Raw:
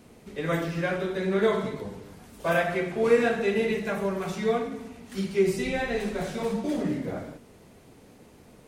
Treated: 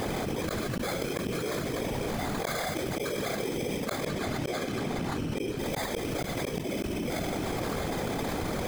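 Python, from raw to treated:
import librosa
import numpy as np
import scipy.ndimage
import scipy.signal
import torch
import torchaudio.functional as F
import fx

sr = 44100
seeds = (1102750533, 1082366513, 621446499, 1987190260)

y = fx.hum_notches(x, sr, base_hz=50, count=7)
y = fx.small_body(y, sr, hz=(750.0, 1200.0), ring_ms=35, db=8)
y = fx.sample_hold(y, sr, seeds[0], rate_hz=2800.0, jitter_pct=0)
y = fx.high_shelf(y, sr, hz=9300.0, db=-7.5, at=(4.05, 5.58))
y = fx.whisperise(y, sr, seeds[1])
y = fx.dynamic_eq(y, sr, hz=850.0, q=1.3, threshold_db=-39.0, ratio=4.0, max_db=-5)
y = fx.gate_flip(y, sr, shuts_db=-19.0, range_db=-37)
y = fx.env_flatten(y, sr, amount_pct=100)
y = y * librosa.db_to_amplitude(-4.0)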